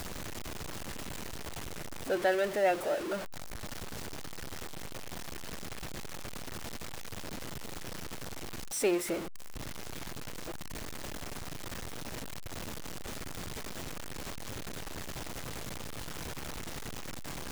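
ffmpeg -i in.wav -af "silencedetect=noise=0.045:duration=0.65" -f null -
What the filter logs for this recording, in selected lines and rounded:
silence_start: 0.00
silence_end: 2.10 | silence_duration: 2.10
silence_start: 3.14
silence_end: 8.84 | silence_duration: 5.70
silence_start: 9.14
silence_end: 17.52 | silence_duration: 8.37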